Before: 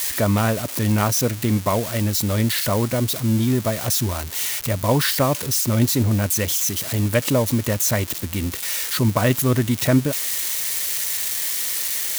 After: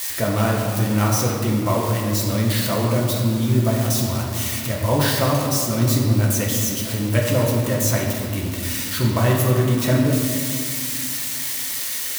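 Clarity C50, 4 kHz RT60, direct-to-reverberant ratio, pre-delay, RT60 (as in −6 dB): 1.0 dB, 1.4 s, −3.0 dB, 6 ms, 2.3 s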